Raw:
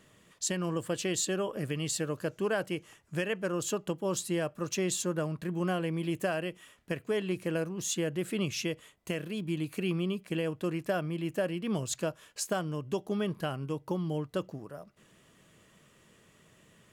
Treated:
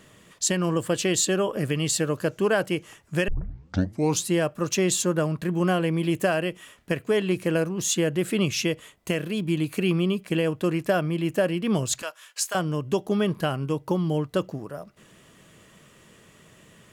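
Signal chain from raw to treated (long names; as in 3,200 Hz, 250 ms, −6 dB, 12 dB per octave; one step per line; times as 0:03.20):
0:03.28: tape start 0.97 s
0:12.02–0:12.55: high-pass filter 1,100 Hz 12 dB per octave
level +8 dB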